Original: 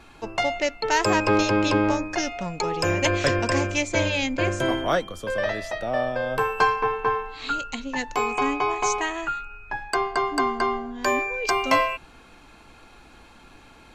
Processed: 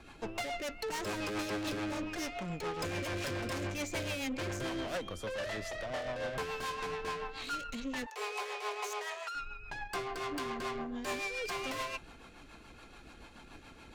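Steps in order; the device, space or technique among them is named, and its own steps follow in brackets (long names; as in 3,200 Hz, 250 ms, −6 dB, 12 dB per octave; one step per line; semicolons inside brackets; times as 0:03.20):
overdriven rotary cabinet (tube saturation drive 33 dB, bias 0.4; rotating-speaker cabinet horn 7 Hz)
0:08.06–0:09.35: Chebyshev high-pass filter 380 Hz, order 10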